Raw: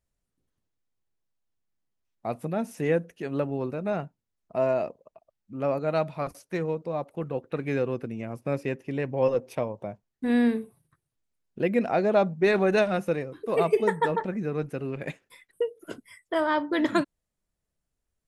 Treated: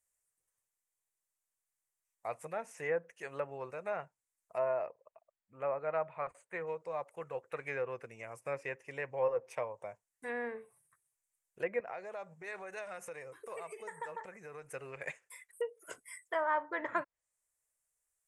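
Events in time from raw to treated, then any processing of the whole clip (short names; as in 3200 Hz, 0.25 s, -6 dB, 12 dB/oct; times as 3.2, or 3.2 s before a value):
4.86–6.67 running mean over 8 samples
11.8–14.72 compressor 12:1, threshold -31 dBFS
whole clip: pre-emphasis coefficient 0.9; treble ducked by the level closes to 1500 Hz, closed at -38.5 dBFS; ten-band EQ 125 Hz +3 dB, 250 Hz -10 dB, 500 Hz +10 dB, 1000 Hz +9 dB, 2000 Hz +10 dB, 4000 Hz -10 dB, 8000 Hz +11 dB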